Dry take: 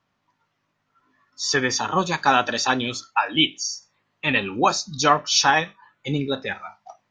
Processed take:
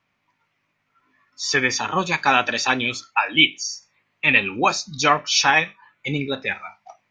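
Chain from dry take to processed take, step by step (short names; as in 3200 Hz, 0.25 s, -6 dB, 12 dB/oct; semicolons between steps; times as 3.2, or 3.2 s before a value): bell 2300 Hz +11 dB 0.52 oct; gain -1 dB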